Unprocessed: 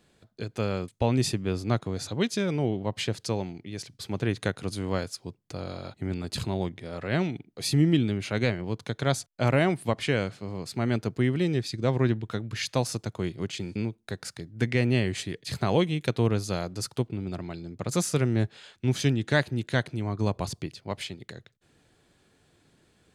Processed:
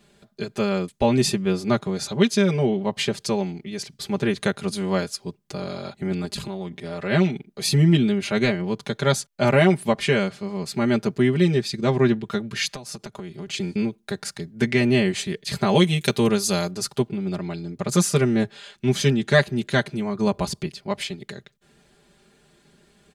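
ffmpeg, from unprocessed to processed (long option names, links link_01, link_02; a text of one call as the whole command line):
ffmpeg -i in.wav -filter_complex "[0:a]asettb=1/sr,asplit=3[link_01][link_02][link_03];[link_01]atrim=end=6.254[link_04];[link_02]atrim=start=6.25:end=7.01,asetpts=PTS-STARTPTS,afade=type=in:duration=0.004:curve=qsin,afade=type=out:start_time=0.756:duration=0.004:curve=qsin,acompressor=threshold=-32dB:ratio=6:attack=3.2:release=140:knee=1:detection=peak[link_05];[link_03]atrim=start=7.006[link_06];[link_04][link_05]acrossfade=duration=0.004:curve1=hsin:curve2=qsin[link_07];[link_07][link_06]acrossfade=duration=0.004:curve1=qsin:curve2=hsin,asplit=3[link_08][link_09][link_10];[link_08]afade=type=out:start_time=12.68:duration=0.02[link_11];[link_09]acompressor=threshold=-36dB:ratio=16:attack=3.2:release=140:knee=1:detection=peak,afade=type=in:start_time=12.68:duration=0.02,afade=type=out:start_time=13.46:duration=0.02[link_12];[link_10]afade=type=in:start_time=13.46:duration=0.02[link_13];[link_11][link_12][link_13]amix=inputs=3:normalize=0,asettb=1/sr,asplit=3[link_14][link_15][link_16];[link_14]atrim=end=15.754[link_17];[link_15]atrim=start=15.75:end=16.71,asetpts=PTS-STARTPTS,afade=type=in:duration=0.004:curve=qsin,afade=type=out:start_time=0.956:duration=0.004:curve=qsin,highshelf=frequency=4500:gain=11.5[link_18];[link_16]atrim=start=16.706[link_19];[link_17][link_18]acrossfade=duration=0.004:curve1=hsin:curve2=qsin[link_20];[link_20][link_19]acrossfade=duration=0.004:curve1=qsin:curve2=hsin,aecho=1:1:5:0.95,volume=3.5dB" out.wav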